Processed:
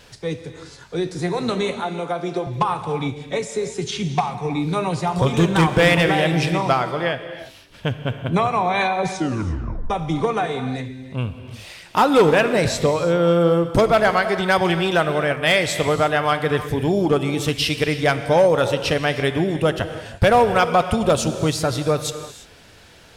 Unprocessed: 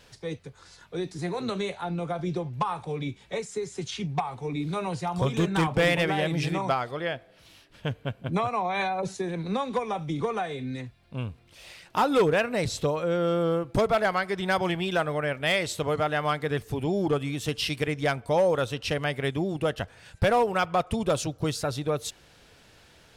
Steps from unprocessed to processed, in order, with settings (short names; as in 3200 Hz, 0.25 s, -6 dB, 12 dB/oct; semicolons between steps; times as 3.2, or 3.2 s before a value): 1.8–2.47 HPF 290 Hz 12 dB/oct; 9.09 tape stop 0.81 s; non-linear reverb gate 0.37 s flat, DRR 9 dB; gain +7.5 dB